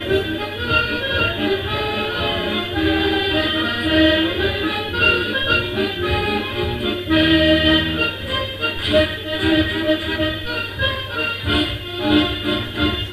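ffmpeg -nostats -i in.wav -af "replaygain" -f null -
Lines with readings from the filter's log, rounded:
track_gain = -2.7 dB
track_peak = 0.500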